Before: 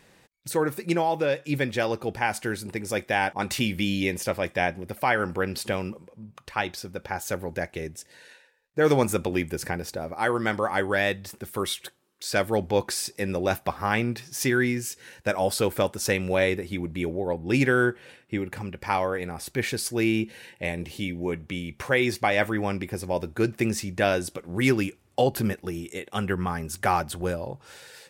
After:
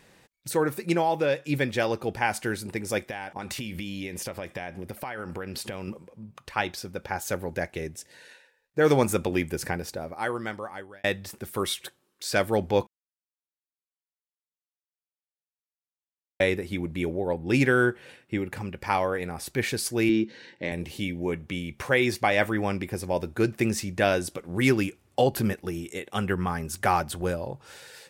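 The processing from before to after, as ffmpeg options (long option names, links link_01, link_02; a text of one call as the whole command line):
ffmpeg -i in.wav -filter_complex "[0:a]asettb=1/sr,asplit=3[link_01][link_02][link_03];[link_01]atrim=end=2.984[link_04];[link_02]atrim=start=2.98:end=5.88,asetpts=PTS-STARTPTS,afade=type=in:duration=0.004:curve=qsin,afade=type=out:start_time=2.896:duration=0.004:curve=qsin,acompressor=threshold=-30dB:ratio=12:attack=3.2:release=140:knee=1:detection=peak[link_05];[link_03]atrim=start=5.876[link_06];[link_04][link_05]acrossfade=duration=0.004:curve1=hsin:curve2=qsin[link_07];[link_07][link_06]acrossfade=duration=0.004:curve1=qsin:curve2=hsin,asettb=1/sr,asplit=3[link_08][link_09][link_10];[link_08]atrim=end=20.094[link_11];[link_09]atrim=start=20.09:end=20.72,asetpts=PTS-STARTPTS,afade=type=in:duration=0.004:curve=qsin,afade=type=out:start_time=0.626:duration=0.004:curve=qsin,highpass=150,equalizer=frequency=290:width_type=q:width=4:gain=8,equalizer=frequency=720:width_type=q:width=4:gain=-8,equalizer=frequency=2600:width_type=q:width=4:gain=-8,equalizer=frequency=4200:width_type=q:width=4:gain=3,lowpass=frequency=5700:width=0.5412,lowpass=frequency=5700:width=1.3066[link_12];[link_10]atrim=start=20.716[link_13];[link_11][link_12]acrossfade=duration=0.004:curve1=hsin:curve2=qsin[link_14];[link_14][link_13]acrossfade=duration=0.004:curve1=qsin:curve2=hsin,asplit=4[link_15][link_16][link_17][link_18];[link_15]atrim=end=11.04,asetpts=PTS-STARTPTS,afade=type=out:start_time=9.71:duration=1.33[link_19];[link_16]atrim=start=11.04:end=12.87,asetpts=PTS-STARTPTS,afade=type=in:duration=0.004:curve=hsin,afade=type=out:start_time=1.826:duration=0.004:curve=hsin[link_20];[link_17]atrim=start=12.87:end=16.4,asetpts=PTS-STARTPTS,volume=0[link_21];[link_18]atrim=start=16.4,asetpts=PTS-STARTPTS,afade=type=in:duration=0.004:curve=hsin[link_22];[link_19][link_20][link_21][link_22]concat=n=4:v=0:a=1" out.wav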